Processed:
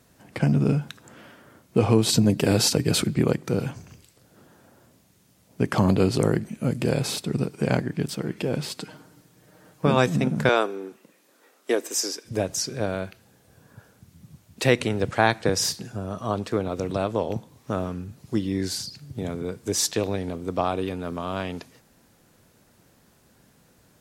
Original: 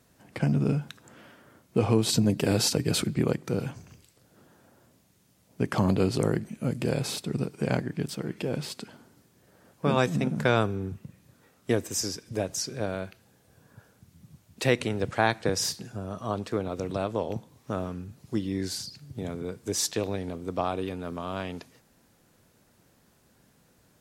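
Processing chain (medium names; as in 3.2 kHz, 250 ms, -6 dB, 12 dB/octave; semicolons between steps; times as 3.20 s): 8.77–9.86 s: comb 6.5 ms, depth 61%; 10.49–12.25 s: high-pass 310 Hz 24 dB/octave; trim +4 dB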